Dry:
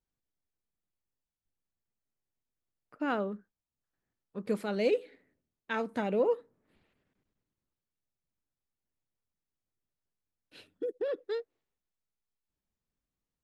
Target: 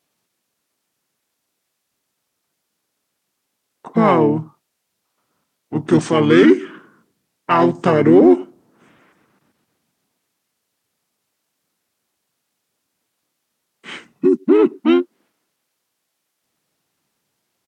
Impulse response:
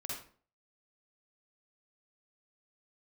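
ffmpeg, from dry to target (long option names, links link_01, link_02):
-filter_complex "[0:a]asetrate=33516,aresample=44100,apsyclip=24.5dB,asplit=2[link_01][link_02];[link_02]asetrate=33038,aresample=44100,atempo=1.33484,volume=-4dB[link_03];[link_01][link_03]amix=inputs=2:normalize=0,highpass=210,asplit=2[link_04][link_05];[link_05]volume=2.5dB,asoftclip=hard,volume=-2.5dB,volume=-10dB[link_06];[link_04][link_06]amix=inputs=2:normalize=0,volume=-7dB"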